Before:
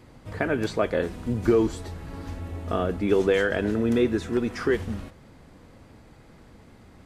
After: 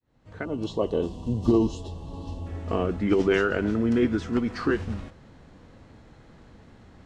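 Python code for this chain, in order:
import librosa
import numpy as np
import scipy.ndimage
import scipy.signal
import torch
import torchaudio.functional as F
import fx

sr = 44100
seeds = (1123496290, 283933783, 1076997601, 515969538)

y = fx.fade_in_head(x, sr, length_s=0.91)
y = scipy.signal.sosfilt(scipy.signal.butter(2, 7600.0, 'lowpass', fs=sr, output='sos'), y)
y = fx.formant_shift(y, sr, semitones=-2)
y = fx.spec_box(y, sr, start_s=0.45, length_s=2.02, low_hz=1200.0, high_hz=2600.0, gain_db=-20)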